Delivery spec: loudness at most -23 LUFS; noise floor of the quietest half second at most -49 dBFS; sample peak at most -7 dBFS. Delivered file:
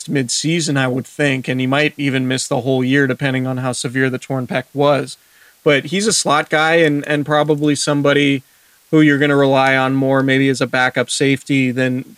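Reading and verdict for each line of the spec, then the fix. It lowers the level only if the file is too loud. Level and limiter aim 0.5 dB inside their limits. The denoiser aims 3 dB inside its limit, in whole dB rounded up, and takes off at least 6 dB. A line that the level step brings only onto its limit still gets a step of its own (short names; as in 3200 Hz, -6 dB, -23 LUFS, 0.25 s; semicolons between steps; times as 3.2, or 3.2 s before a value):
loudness -15.5 LUFS: fail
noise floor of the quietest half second -52 dBFS: OK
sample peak -1.5 dBFS: fail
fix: gain -8 dB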